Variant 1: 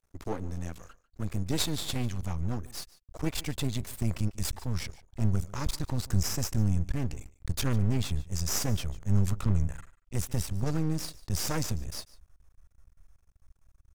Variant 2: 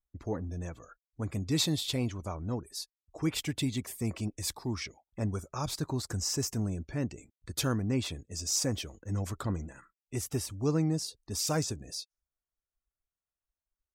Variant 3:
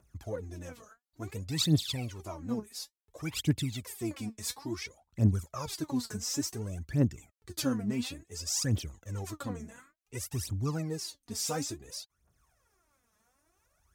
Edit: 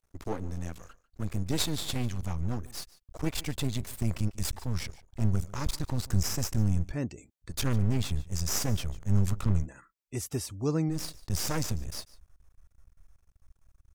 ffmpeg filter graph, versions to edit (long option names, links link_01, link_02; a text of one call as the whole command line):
ffmpeg -i take0.wav -i take1.wav -filter_complex "[1:a]asplit=2[link_01][link_02];[0:a]asplit=3[link_03][link_04][link_05];[link_03]atrim=end=6.97,asetpts=PTS-STARTPTS[link_06];[link_01]atrim=start=6.81:end=7.62,asetpts=PTS-STARTPTS[link_07];[link_04]atrim=start=7.46:end=9.68,asetpts=PTS-STARTPTS[link_08];[link_02]atrim=start=9.58:end=10.98,asetpts=PTS-STARTPTS[link_09];[link_05]atrim=start=10.88,asetpts=PTS-STARTPTS[link_10];[link_06][link_07]acrossfade=duration=0.16:curve1=tri:curve2=tri[link_11];[link_11][link_08]acrossfade=duration=0.16:curve1=tri:curve2=tri[link_12];[link_12][link_09]acrossfade=duration=0.1:curve1=tri:curve2=tri[link_13];[link_13][link_10]acrossfade=duration=0.1:curve1=tri:curve2=tri" out.wav